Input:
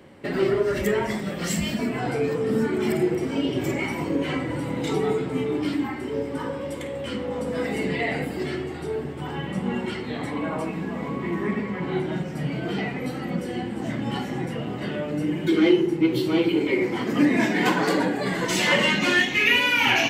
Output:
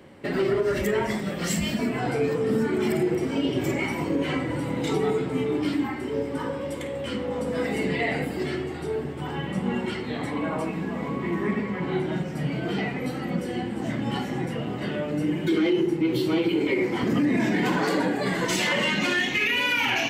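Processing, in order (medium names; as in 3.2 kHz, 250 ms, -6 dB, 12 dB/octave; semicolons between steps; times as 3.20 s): 17.03–17.77 s: bass shelf 220 Hz +10 dB; peak limiter -15 dBFS, peak gain reduction 10.5 dB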